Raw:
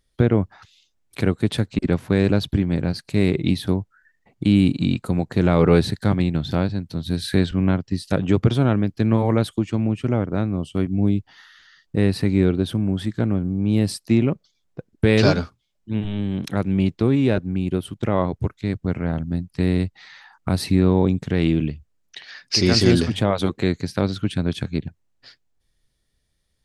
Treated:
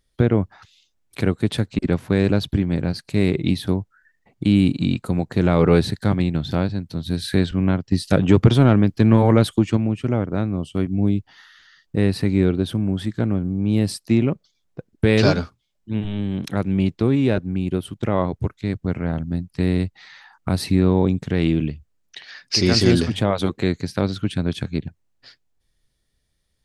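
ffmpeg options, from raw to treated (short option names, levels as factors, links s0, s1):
-filter_complex "[0:a]asettb=1/sr,asplit=3[s0][s1][s2];[s0]atrim=end=7.924[s3];[s1]atrim=start=7.92:end=9.77,asetpts=PTS-STARTPTS,afade=t=in:d=0.004:c=qsin,afade=t=out:st=1.846:d=0.004:c=qsin,acontrast=27[s4];[s2]atrim=start=9.766[s5];[s3][s4]acrossfade=d=0.004:c1=hsin:c2=qsin[s6];[s6][s5]acrossfade=d=0.004:c1=qsin:c2=hsin"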